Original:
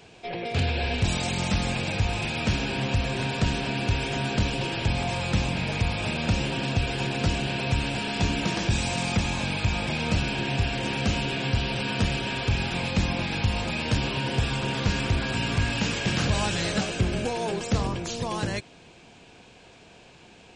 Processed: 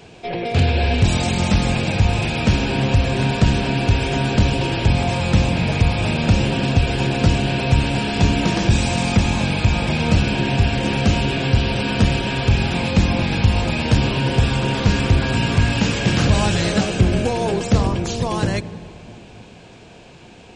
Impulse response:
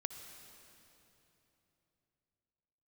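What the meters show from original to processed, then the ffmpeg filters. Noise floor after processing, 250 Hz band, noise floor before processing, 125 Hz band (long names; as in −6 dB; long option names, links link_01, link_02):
−43 dBFS, +9.0 dB, −51 dBFS, +9.5 dB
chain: -filter_complex "[0:a]asplit=2[link_01][link_02];[link_02]tiltshelf=frequency=1500:gain=9[link_03];[1:a]atrim=start_sample=2205,asetrate=52920,aresample=44100[link_04];[link_03][link_04]afir=irnorm=-1:irlink=0,volume=-6.5dB[link_05];[link_01][link_05]amix=inputs=2:normalize=0,volume=4dB"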